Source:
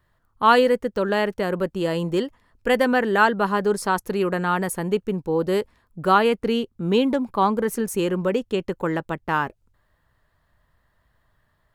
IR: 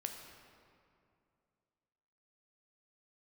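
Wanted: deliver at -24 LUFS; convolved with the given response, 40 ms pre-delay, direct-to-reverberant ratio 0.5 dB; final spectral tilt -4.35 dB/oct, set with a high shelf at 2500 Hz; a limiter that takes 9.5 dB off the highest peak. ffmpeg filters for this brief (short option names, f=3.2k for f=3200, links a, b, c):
-filter_complex "[0:a]highshelf=f=2.5k:g=8.5,alimiter=limit=-11.5dB:level=0:latency=1,asplit=2[a][b];[1:a]atrim=start_sample=2205,adelay=40[c];[b][c]afir=irnorm=-1:irlink=0,volume=0.5dB[d];[a][d]amix=inputs=2:normalize=0,volume=-3.5dB"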